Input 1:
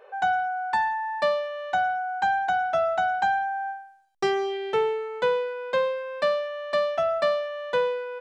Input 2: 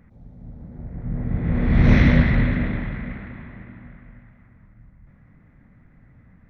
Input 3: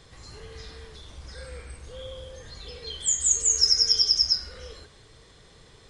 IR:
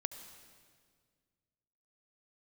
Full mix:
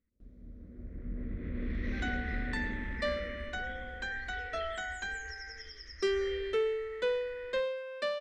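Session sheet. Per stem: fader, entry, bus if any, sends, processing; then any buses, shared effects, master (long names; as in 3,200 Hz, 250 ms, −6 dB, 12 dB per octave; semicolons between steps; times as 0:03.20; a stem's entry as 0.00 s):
−4.5 dB, 1.80 s, no send, no processing
−6.0 dB, 0.00 s, no send, noise gate with hold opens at −39 dBFS; downward compressor 6 to 1, threshold −23 dBFS, peak gain reduction 13.5 dB
−5.5 dB, 1.70 s, no send, low-shelf EQ 63 Hz +10.5 dB; downward compressor 5 to 1, threshold −24 dBFS, peak gain reduction 9 dB; low-pass with resonance 1,900 Hz, resonance Q 11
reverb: not used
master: phaser with its sweep stopped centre 340 Hz, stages 4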